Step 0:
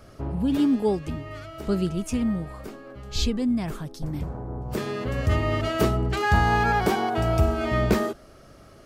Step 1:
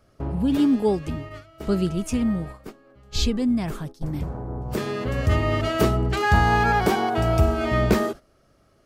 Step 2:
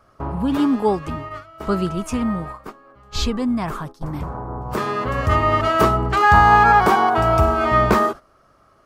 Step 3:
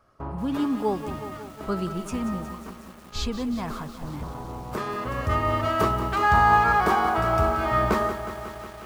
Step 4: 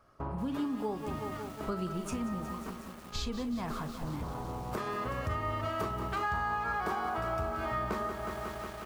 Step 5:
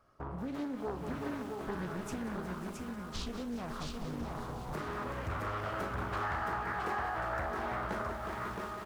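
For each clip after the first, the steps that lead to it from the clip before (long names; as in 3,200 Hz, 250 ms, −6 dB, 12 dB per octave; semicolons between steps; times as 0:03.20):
noise gate −36 dBFS, range −13 dB; level +2 dB
parametric band 1,100 Hz +14 dB 1.1 octaves
feedback echo at a low word length 182 ms, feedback 80%, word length 6 bits, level −11 dB; level −7 dB
downward compressor 4 to 1, threshold −31 dBFS, peak gain reduction 14.5 dB; double-tracking delay 38 ms −13 dB; level −1.5 dB
single-tap delay 669 ms −3.5 dB; highs frequency-modulated by the lows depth 0.67 ms; level −4 dB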